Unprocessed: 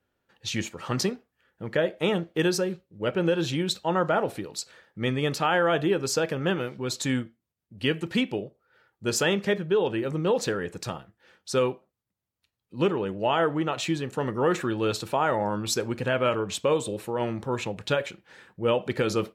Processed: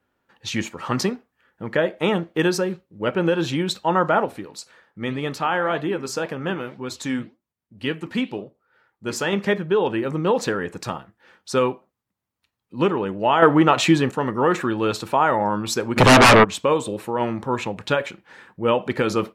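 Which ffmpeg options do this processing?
ffmpeg -i in.wav -filter_complex "[0:a]asettb=1/sr,asplit=3[link_01][link_02][link_03];[link_01]atrim=end=4.254[link_04];[link_02]atrim=start=4.25:end=9.33,asetpts=PTS-STARTPTS,afade=type=in:duration=0.004:curve=qsin,afade=type=out:start_time=5.076:duration=0.004:curve=qsin,flanger=delay=4.1:depth=7.8:regen=-82:speed=1.9:shape=sinusoidal[link_05];[link_03]atrim=start=9.326[link_06];[link_04][link_05]acrossfade=duration=0.004:curve1=hsin:curve2=qsin[link_07];[link_07][link_06]acrossfade=duration=0.004:curve1=qsin:curve2=hsin,asettb=1/sr,asplit=3[link_08][link_09][link_10];[link_08]atrim=end=13.424[link_11];[link_09]atrim=start=13.42:end=14.12,asetpts=PTS-STARTPTS,afade=type=in:duration=0.004:curve=qsin,afade=type=out:start_time=0.696:duration=0.004:curve=qsin,acontrast=84[link_12];[link_10]atrim=start=14.116[link_13];[link_11][link_12]acrossfade=duration=0.004:curve1=hsin:curve2=qsin[link_14];[link_14][link_13]acrossfade=duration=0.004:curve1=qsin:curve2=hsin,asplit=3[link_15][link_16][link_17];[link_15]afade=type=out:start_time=15.96:duration=0.02[link_18];[link_16]aeval=exprs='0.251*sin(PI/2*5.62*val(0)/0.251)':channel_layout=same,afade=type=in:start_time=15.96:duration=0.02,afade=type=out:start_time=16.43:duration=0.02[link_19];[link_17]afade=type=in:start_time=16.43:duration=0.02[link_20];[link_18][link_19][link_20]amix=inputs=3:normalize=0,equalizer=frequency=250:width_type=o:width=1:gain=5,equalizer=frequency=1000:width_type=o:width=1:gain=7,equalizer=frequency=2000:width_type=o:width=1:gain=3,volume=1dB" out.wav

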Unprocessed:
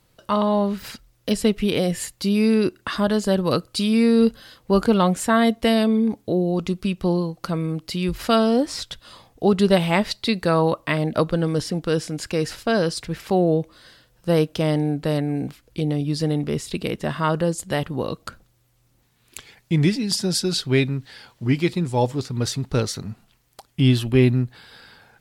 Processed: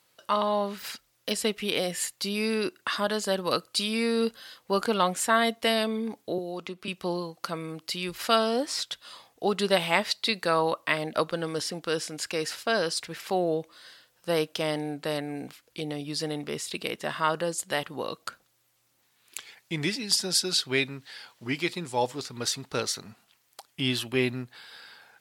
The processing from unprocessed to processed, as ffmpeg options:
ffmpeg -i in.wav -filter_complex "[0:a]asettb=1/sr,asplit=3[link_01][link_02][link_03];[link_01]atrim=end=6.384[link_04];[link_02]atrim=start=6.38:end=6.88,asetpts=PTS-STARTPTS,afade=type=in:duration=0.004:curve=qsin,afade=type=out:start_time=0.496:duration=0.004:curve=qsin,acrossover=split=220|3400[link_05][link_06][link_07];[link_05]acompressor=threshold=-34dB:ratio=4[link_08];[link_06]acompressor=threshold=-24dB:ratio=4[link_09];[link_07]acompressor=threshold=-55dB:ratio=4[link_10];[link_08][link_09][link_10]amix=inputs=3:normalize=0[link_11];[link_03]atrim=start=6.876[link_12];[link_04][link_11]acrossfade=duration=0.004:curve1=hsin:curve2=qsin[link_13];[link_13][link_12]acrossfade=duration=0.004:curve1=qsin:curve2=hsin,highpass=frequency=910:poles=1" out.wav

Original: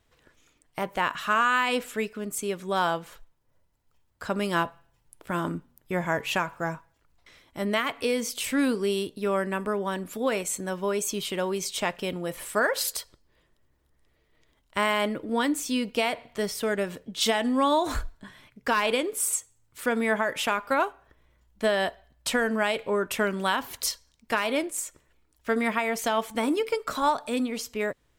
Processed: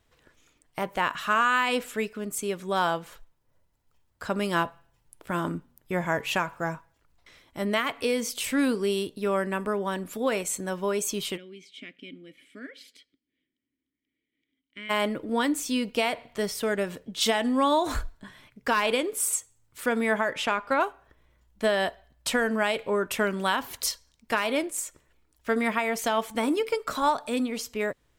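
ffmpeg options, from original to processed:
ffmpeg -i in.wav -filter_complex "[0:a]asplit=3[link_01][link_02][link_03];[link_01]afade=type=out:start_time=11.36:duration=0.02[link_04];[link_02]asplit=3[link_05][link_06][link_07];[link_05]bandpass=frequency=270:width_type=q:width=8,volume=0dB[link_08];[link_06]bandpass=frequency=2290:width_type=q:width=8,volume=-6dB[link_09];[link_07]bandpass=frequency=3010:width_type=q:width=8,volume=-9dB[link_10];[link_08][link_09][link_10]amix=inputs=3:normalize=0,afade=type=in:start_time=11.36:duration=0.02,afade=type=out:start_time=14.89:duration=0.02[link_11];[link_03]afade=type=in:start_time=14.89:duration=0.02[link_12];[link_04][link_11][link_12]amix=inputs=3:normalize=0,asettb=1/sr,asplit=3[link_13][link_14][link_15];[link_13]atrim=end=20.294[link_16];[link_14]atrim=start=20.29:end=20.81,asetpts=PTS-STARTPTS,afade=type=in:duration=0.004:curve=qsin,afade=type=out:start_time=0.516:duration=0.004:curve=qsin,adynamicsmooth=sensitivity=1:basefreq=7600[link_17];[link_15]atrim=start=20.806[link_18];[link_16][link_17]acrossfade=duration=0.004:curve1=hsin:curve2=qsin[link_19];[link_19][link_18]acrossfade=duration=0.004:curve1=qsin:curve2=hsin" out.wav

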